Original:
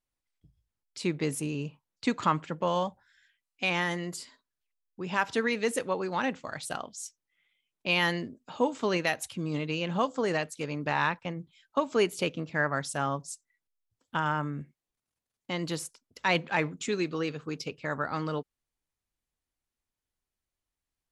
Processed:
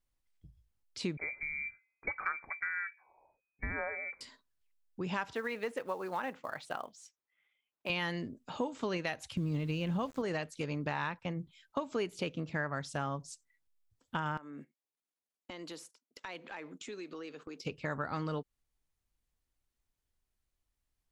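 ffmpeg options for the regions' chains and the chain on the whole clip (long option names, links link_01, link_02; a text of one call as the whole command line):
ffmpeg -i in.wav -filter_complex "[0:a]asettb=1/sr,asplit=3[link_01][link_02][link_03];[link_01]atrim=end=1.174[link_04];[link_02]atrim=start=1.17:end=4.21,asetpts=PTS-STARTPTS,afade=type=in:duration=0.004:curve=qsin,afade=type=out:start_time=3.036:duration=0.004:curve=qsin,equalizer=frequency=350:width=0.87:gain=-9,bandreject=frequency=222.2:width_type=h:width=4,bandreject=frequency=444.4:width_type=h:width=4,lowpass=frequency=2100:width_type=q:width=0.5098,lowpass=frequency=2100:width_type=q:width=0.6013,lowpass=frequency=2100:width_type=q:width=0.9,lowpass=frequency=2100:width_type=q:width=2.563,afreqshift=-2500[link_05];[link_03]atrim=start=4.206[link_06];[link_04][link_05]acrossfade=duration=0.004:curve1=hsin:curve2=qsin[link_07];[link_07][link_06]acrossfade=duration=0.004:curve1=qsin:curve2=hsin,asettb=1/sr,asplit=3[link_08][link_09][link_10];[link_08]atrim=end=5.334[link_11];[link_09]atrim=start=5.33:end=7.9,asetpts=PTS-STARTPTS,afade=type=in:duration=0.004:curve=qsin,afade=type=out:start_time=2.566:duration=0.004:curve=qsin,bandpass=frequency=980:width_type=q:width=0.63,acrusher=bits=6:mode=log:mix=0:aa=0.000001[link_12];[link_10]atrim=start=7.896[link_13];[link_11][link_12]acrossfade=duration=0.004:curve1=hsin:curve2=qsin[link_14];[link_14][link_13]acrossfade=duration=0.004:curve1=qsin:curve2=hsin,asettb=1/sr,asplit=3[link_15][link_16][link_17];[link_15]atrim=end=9.374[link_18];[link_16]atrim=start=9.37:end=10.22,asetpts=PTS-STARTPTS,afade=type=in:duration=0.004:curve=qsin,afade=type=out:start_time=0.846:duration=0.004:curve=qsin,equalizer=frequency=61:width_type=o:width=2.7:gain=13.5,aeval=exprs='val(0)*gte(abs(val(0)),0.00596)':channel_layout=same[link_19];[link_17]atrim=start=10.216[link_20];[link_18][link_19]acrossfade=duration=0.004:curve1=hsin:curve2=qsin[link_21];[link_21][link_20]acrossfade=duration=0.004:curve1=qsin:curve2=hsin,asettb=1/sr,asplit=3[link_22][link_23][link_24];[link_22]atrim=end=14.374[link_25];[link_23]atrim=start=14.37:end=17.65,asetpts=PTS-STARTPTS,afade=type=in:duration=0.004:curve=qsin,afade=type=out:start_time=3.276:duration=0.004:curve=qsin,highpass=frequency=240:width=0.5412,highpass=frequency=240:width=1.3066,agate=range=-9dB:threshold=-53dB:ratio=16:release=100:detection=peak,acompressor=threshold=-44dB:ratio=4:attack=3.2:release=140:knee=1:detection=peak[link_26];[link_24]atrim=start=17.646[link_27];[link_25][link_26]acrossfade=duration=0.004:curve1=hsin:curve2=qsin[link_28];[link_28][link_27]acrossfade=duration=0.004:curve1=qsin:curve2=hsin,acrossover=split=6200[link_29][link_30];[link_30]acompressor=threshold=-54dB:ratio=4:attack=1:release=60[link_31];[link_29][link_31]amix=inputs=2:normalize=0,lowshelf=frequency=97:gain=10,acompressor=threshold=-34dB:ratio=3" out.wav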